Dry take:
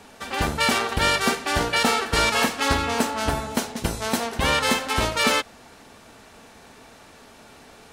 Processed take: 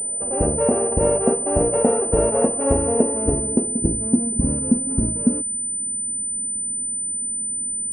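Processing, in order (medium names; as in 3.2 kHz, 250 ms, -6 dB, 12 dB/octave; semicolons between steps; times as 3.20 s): sorted samples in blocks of 16 samples; low-pass sweep 540 Hz -> 240 Hz, 2.86–4.38 s; class-D stage that switches slowly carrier 9 kHz; trim +3.5 dB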